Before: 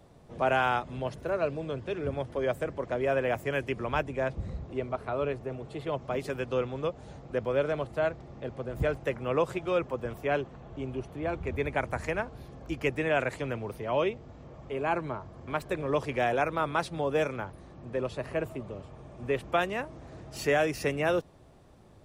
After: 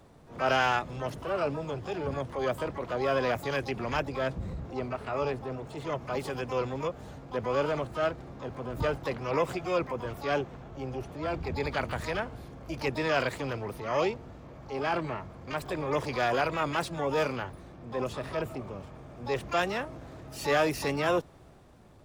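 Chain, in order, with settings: transient shaper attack -4 dB, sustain +2 dB; harmoniser +12 st -8 dB

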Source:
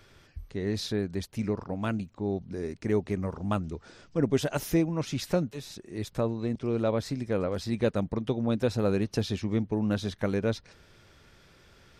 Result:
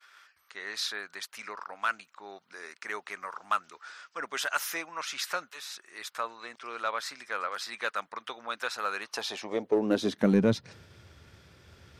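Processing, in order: expander -53 dBFS; high-pass sweep 1300 Hz -> 80 Hz, 8.98–10.98; in parallel at -7.5 dB: hard clip -27 dBFS, distortion -7 dB

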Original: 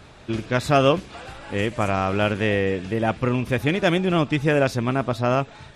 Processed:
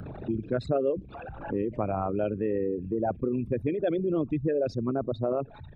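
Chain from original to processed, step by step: formant sharpening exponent 3; three-band squash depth 70%; gain -7 dB

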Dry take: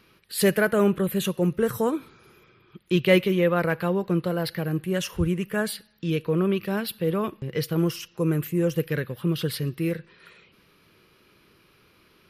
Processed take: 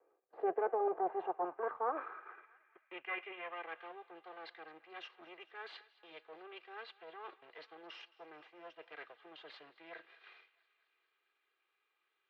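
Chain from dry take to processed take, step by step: minimum comb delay 2.5 ms; reverse; compressor 8:1, threshold -37 dBFS, peak gain reduction 21 dB; reverse; gate -55 dBFS, range -15 dB; HPF 120 Hz; three-band isolator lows -18 dB, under 390 Hz, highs -17 dB, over 2400 Hz; on a send: thinning echo 0.219 s, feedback 72%, high-pass 660 Hz, level -20 dB; on the sum: band-pass sweep 570 Hz -> 3900 Hz, 0.57–4.1; tape spacing loss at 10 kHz 38 dB; gain +18 dB

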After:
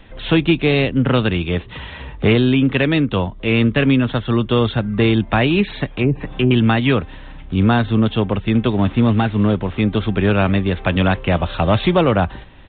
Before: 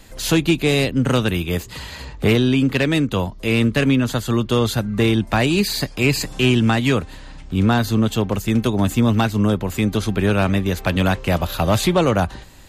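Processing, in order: 8.7–9.8 CVSD 32 kbps; downsampling 8000 Hz; 5.9–6.51 treble ducked by the level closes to 430 Hz, closed at -12.5 dBFS; gain +2 dB

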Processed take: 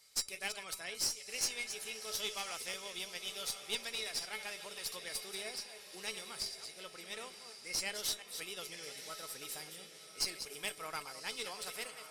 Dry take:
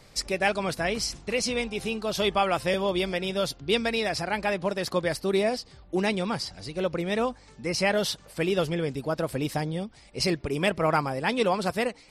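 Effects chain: reverse delay 0.175 s, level -9.5 dB; pre-emphasis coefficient 0.97; resonator 430 Hz, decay 0.18 s, harmonics odd, mix 80%; on a send: diffused feedback echo 1.127 s, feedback 41%, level -10 dB; on the sum: added harmonics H 6 -20 dB, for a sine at -28 dBFS; gain +9 dB

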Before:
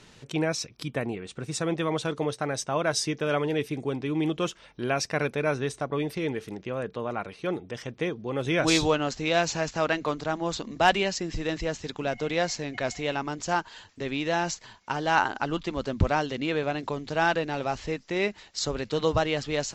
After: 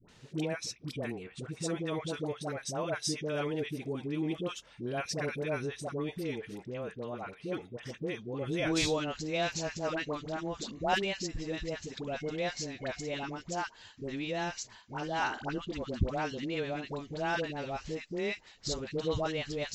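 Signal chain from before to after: dispersion highs, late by 88 ms, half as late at 760 Hz; dynamic EQ 1100 Hz, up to -4 dB, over -41 dBFS, Q 1; gain -6 dB

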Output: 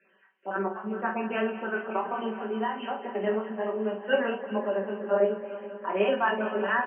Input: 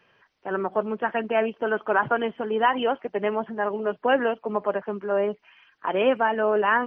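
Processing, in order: random spectral dropouts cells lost 22%; Chebyshev band-pass 190–2900 Hz, order 5; comb 5.2 ms, depth 73%; 1.96–3.27 compressor 4:1, threshold -23 dBFS, peak gain reduction 9.5 dB; chorus 1.3 Hz, delay 18 ms, depth 5.1 ms; tapped delay 46/429 ms -7.5/-15.5 dB; tremolo triangle 1 Hz, depth 35%; echo with dull and thin repeats by turns 0.1 s, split 890 Hz, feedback 88%, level -13 dB

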